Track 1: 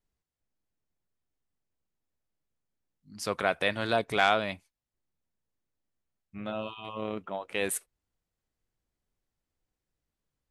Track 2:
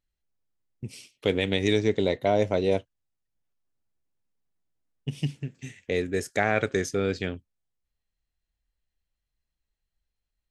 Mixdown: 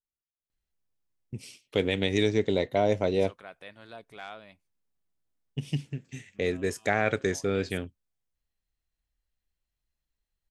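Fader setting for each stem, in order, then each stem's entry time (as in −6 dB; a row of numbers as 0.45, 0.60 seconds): −18.5, −1.5 decibels; 0.00, 0.50 seconds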